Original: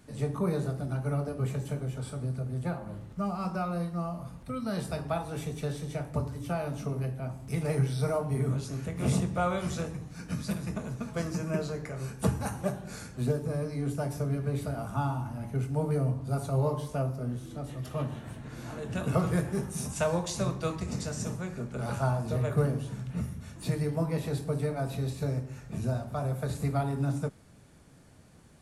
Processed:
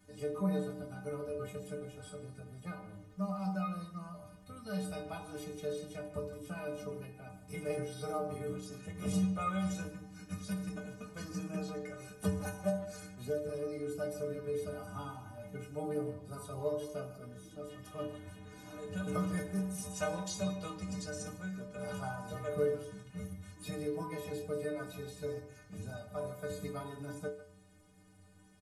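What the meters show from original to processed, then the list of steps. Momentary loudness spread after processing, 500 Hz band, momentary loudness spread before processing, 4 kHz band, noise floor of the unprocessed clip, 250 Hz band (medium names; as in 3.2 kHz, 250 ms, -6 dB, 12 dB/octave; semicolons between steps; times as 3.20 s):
12 LU, -4.5 dB, 8 LU, -5.5 dB, -50 dBFS, -6.0 dB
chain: inharmonic resonator 90 Hz, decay 0.67 s, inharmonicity 0.03; speakerphone echo 150 ms, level -14 dB; trim +6.5 dB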